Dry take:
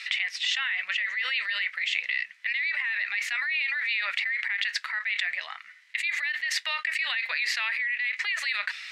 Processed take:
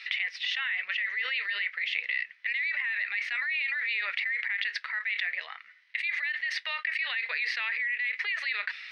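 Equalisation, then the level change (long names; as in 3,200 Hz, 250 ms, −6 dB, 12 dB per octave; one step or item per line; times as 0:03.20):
parametric band 440 Hz +14.5 dB 0.43 octaves
dynamic equaliser 2,000 Hz, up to +4 dB, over −41 dBFS, Q 1.5
Savitzky-Golay smoothing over 15 samples
−5.5 dB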